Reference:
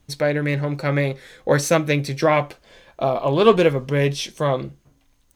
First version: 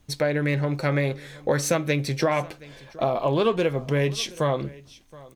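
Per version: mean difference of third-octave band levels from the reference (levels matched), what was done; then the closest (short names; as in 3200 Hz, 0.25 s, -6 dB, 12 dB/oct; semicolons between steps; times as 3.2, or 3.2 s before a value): 3.0 dB: compressor 5:1, threshold -19 dBFS, peak gain reduction 10.5 dB; on a send: echo 0.722 s -21.5 dB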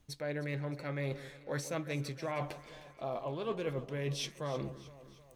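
5.5 dB: reverse; compressor 6:1, threshold -29 dBFS, peak gain reduction 19.5 dB; reverse; echo with dull and thin repeats by turns 0.155 s, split 1100 Hz, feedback 72%, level -13 dB; gain -6 dB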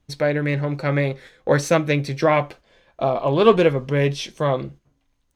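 1.5 dB: gate -41 dBFS, range -7 dB; high shelf 7400 Hz -10.5 dB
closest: third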